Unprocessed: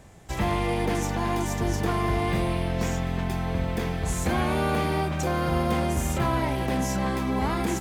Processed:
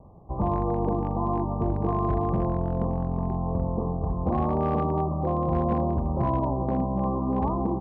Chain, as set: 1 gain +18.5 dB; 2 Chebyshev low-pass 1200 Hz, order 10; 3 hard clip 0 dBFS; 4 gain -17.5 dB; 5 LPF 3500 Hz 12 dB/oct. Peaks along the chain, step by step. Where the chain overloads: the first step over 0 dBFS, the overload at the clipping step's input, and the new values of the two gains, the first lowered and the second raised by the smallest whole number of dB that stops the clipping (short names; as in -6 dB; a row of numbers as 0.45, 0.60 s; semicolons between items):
+2.5, +4.0, 0.0, -17.5, -17.5 dBFS; step 1, 4.0 dB; step 1 +14.5 dB, step 4 -13.5 dB